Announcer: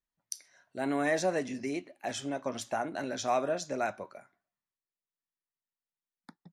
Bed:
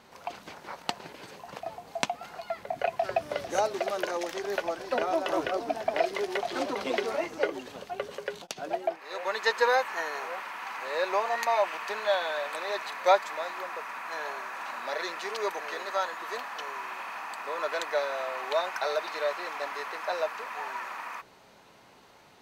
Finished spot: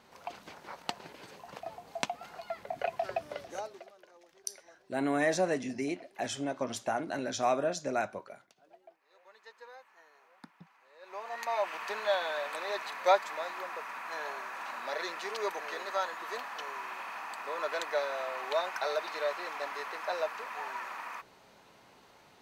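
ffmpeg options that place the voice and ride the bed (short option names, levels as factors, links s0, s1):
-filter_complex "[0:a]adelay=4150,volume=1.06[s0];[1:a]volume=10,afade=t=out:st=2.98:d=0.95:silence=0.0707946,afade=t=in:st=11:d=0.84:silence=0.0595662[s1];[s0][s1]amix=inputs=2:normalize=0"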